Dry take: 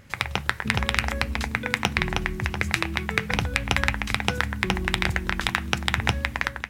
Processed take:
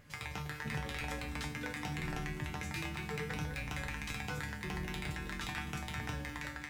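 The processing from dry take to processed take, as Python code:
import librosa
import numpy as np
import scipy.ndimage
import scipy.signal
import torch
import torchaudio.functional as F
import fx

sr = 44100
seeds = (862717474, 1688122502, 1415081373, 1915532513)

p1 = fx.over_compress(x, sr, threshold_db=-27.0, ratio=-0.5)
p2 = x + F.gain(torch.from_numpy(p1), 0.0).numpy()
p3 = 10.0 ** (-15.5 / 20.0) * np.tanh(p2 / 10.0 ** (-15.5 / 20.0))
p4 = fx.comb_fb(p3, sr, f0_hz=150.0, decay_s=0.38, harmonics='all', damping=0.0, mix_pct=90)
p5 = fx.echo_alternate(p4, sr, ms=102, hz=870.0, feedback_pct=72, wet_db=-11.0)
y = F.gain(torch.from_numpy(p5), -2.5).numpy()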